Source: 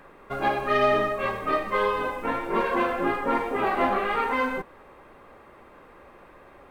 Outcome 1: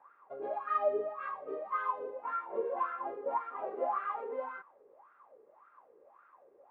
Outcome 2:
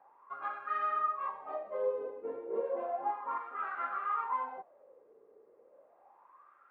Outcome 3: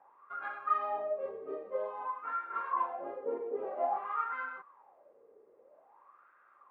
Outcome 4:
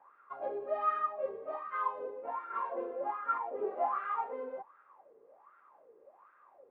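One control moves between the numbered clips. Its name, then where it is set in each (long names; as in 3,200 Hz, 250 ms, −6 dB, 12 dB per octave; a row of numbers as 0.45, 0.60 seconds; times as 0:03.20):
LFO wah, speed: 1.8, 0.33, 0.51, 1.3 Hertz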